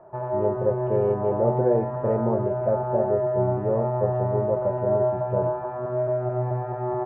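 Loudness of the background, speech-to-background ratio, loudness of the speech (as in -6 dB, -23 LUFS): -26.5 LUFS, -0.5 dB, -27.0 LUFS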